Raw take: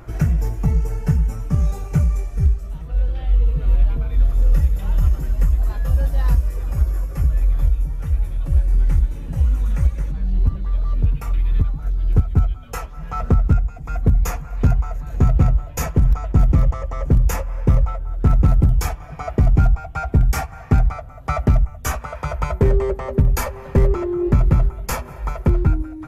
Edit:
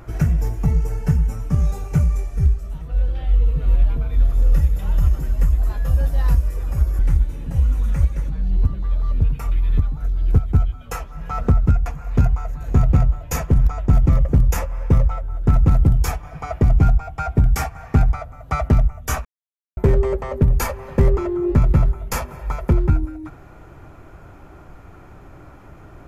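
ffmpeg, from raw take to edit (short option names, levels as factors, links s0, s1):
-filter_complex "[0:a]asplit=6[s0][s1][s2][s3][s4][s5];[s0]atrim=end=6.992[s6];[s1]atrim=start=8.808:end=13.682[s7];[s2]atrim=start=14.318:end=16.712[s8];[s3]atrim=start=17.018:end=22.02,asetpts=PTS-STARTPTS,afade=t=out:st=4.998:d=0.004:c=hsin[s9];[s4]atrim=start=22.02:end=22.54,asetpts=PTS-STARTPTS,volume=0[s10];[s5]atrim=start=22.54,asetpts=PTS-STARTPTS,afade=t=in:d=0.004:c=hsin[s11];[s6][s7]acrossfade=d=0.004:c1=hsin:c2=hsin[s12];[s12][s8]acrossfade=d=0.004:c1=hsin:c2=hsin[s13];[s9][s10][s11]concat=n=3:v=0:a=1[s14];[s13][s14]acrossfade=d=0.004:c1=hsin:c2=hsin"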